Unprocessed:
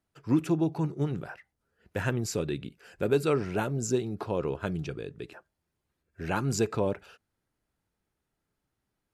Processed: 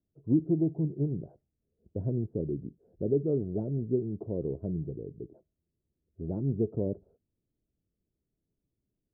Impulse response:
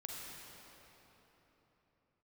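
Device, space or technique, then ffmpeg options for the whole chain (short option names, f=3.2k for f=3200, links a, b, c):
under water: -af "lowpass=f=430:w=0.5412,lowpass=f=430:w=1.3066,lowpass=1.8k,equalizer=f=650:t=o:w=0.27:g=7"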